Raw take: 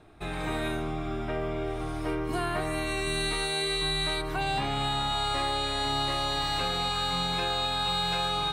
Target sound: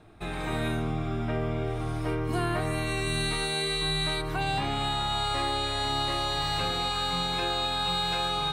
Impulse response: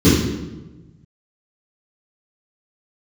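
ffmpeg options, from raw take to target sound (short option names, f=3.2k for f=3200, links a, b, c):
-filter_complex "[0:a]asplit=2[a][b];[1:a]atrim=start_sample=2205,asetrate=57330,aresample=44100,lowshelf=f=160:g=11.5[c];[b][c]afir=irnorm=-1:irlink=0,volume=-46.5dB[d];[a][d]amix=inputs=2:normalize=0"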